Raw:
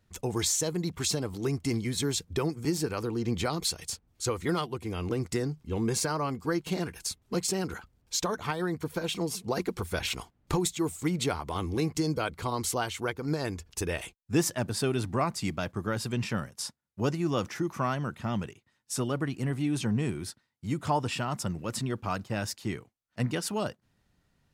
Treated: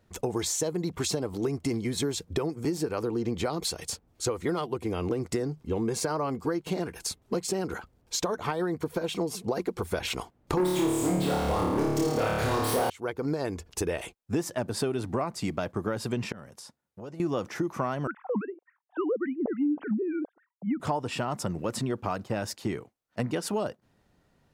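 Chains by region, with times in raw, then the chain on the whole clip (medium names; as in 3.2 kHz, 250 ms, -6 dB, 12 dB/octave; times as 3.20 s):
10.57–12.90 s: waveshaping leveller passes 5 + LFO notch sine 2 Hz 970–7300 Hz + flutter echo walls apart 4.7 m, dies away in 1.1 s
16.32–17.20 s: compression 4:1, threshold -46 dBFS + transformer saturation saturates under 320 Hz
18.07–20.80 s: formants replaced by sine waves + LFO low-pass sine 3.5 Hz 460–1700 Hz
whole clip: peaking EQ 520 Hz +8.5 dB 2.5 oct; compression 5:1, threshold -27 dBFS; trim +1 dB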